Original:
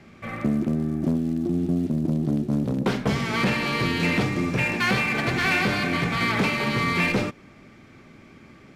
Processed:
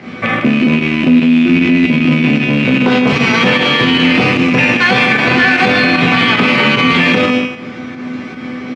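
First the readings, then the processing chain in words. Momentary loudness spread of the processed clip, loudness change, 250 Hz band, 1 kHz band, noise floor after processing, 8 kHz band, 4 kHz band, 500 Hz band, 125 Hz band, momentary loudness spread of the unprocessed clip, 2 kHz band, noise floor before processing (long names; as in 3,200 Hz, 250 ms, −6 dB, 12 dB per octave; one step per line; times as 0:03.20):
14 LU, +13.5 dB, +13.5 dB, +12.5 dB, −27 dBFS, +6.5 dB, +16.0 dB, +12.5 dB, +8.0 dB, 4 LU, +14.0 dB, −50 dBFS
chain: loose part that buzzes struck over −30 dBFS, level −18 dBFS
in parallel at +0.5 dB: downward compressor, threshold −36 dBFS, peak gain reduction 16.5 dB
on the sum: tuned comb filter 250 Hz, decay 0.61 s, harmonics all, mix 90%
fake sidechain pumping 151 BPM, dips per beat 1, −8 dB, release 127 ms
band-pass filter 130–4,100 Hz
on a send: single-tap delay 152 ms −11 dB
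on the sum: boost into a limiter +33 dB
level −1 dB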